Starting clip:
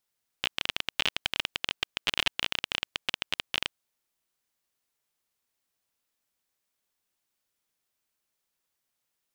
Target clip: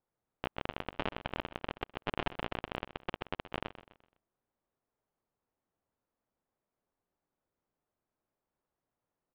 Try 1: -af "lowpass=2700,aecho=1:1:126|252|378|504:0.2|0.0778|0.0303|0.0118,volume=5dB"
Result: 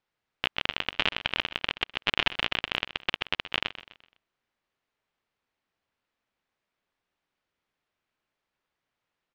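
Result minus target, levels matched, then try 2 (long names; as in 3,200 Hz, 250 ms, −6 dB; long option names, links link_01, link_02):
1,000 Hz band −7.0 dB
-af "lowpass=890,aecho=1:1:126|252|378|504:0.2|0.0778|0.0303|0.0118,volume=5dB"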